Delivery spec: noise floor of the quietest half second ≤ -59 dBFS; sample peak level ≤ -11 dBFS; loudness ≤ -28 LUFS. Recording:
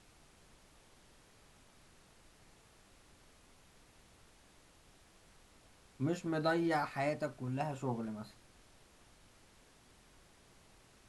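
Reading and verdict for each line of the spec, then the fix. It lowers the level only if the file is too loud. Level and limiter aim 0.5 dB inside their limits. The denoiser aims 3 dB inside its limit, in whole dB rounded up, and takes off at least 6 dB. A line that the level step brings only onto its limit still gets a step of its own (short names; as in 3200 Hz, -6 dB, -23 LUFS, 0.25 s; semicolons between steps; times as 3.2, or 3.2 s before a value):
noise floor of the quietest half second -64 dBFS: OK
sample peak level -22.0 dBFS: OK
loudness -37.0 LUFS: OK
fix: none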